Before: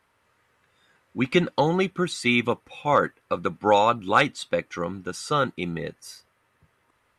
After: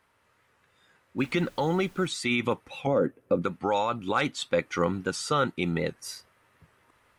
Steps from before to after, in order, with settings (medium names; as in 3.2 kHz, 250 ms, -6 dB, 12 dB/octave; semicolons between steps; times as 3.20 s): 2.87–3.42 s: graphic EQ 125/250/500/1000/2000/4000/8000 Hz +5/+9/+8/-7/-6/-9/-5 dB; peak limiter -14.5 dBFS, peak gain reduction 11 dB; gain riding 0.5 s; 1.18–2.07 s: added noise pink -56 dBFS; warped record 78 rpm, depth 100 cents